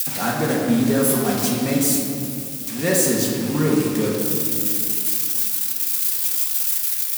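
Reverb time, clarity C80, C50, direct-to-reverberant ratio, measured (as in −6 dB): 2.6 s, 2.5 dB, 1.0 dB, −4.5 dB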